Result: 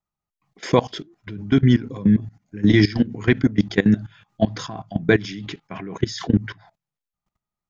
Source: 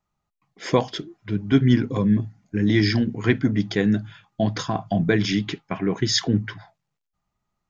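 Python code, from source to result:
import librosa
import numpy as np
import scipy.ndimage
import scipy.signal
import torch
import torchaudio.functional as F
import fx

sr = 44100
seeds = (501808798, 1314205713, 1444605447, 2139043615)

y = fx.level_steps(x, sr, step_db=19)
y = F.gain(torch.from_numpy(y), 6.0).numpy()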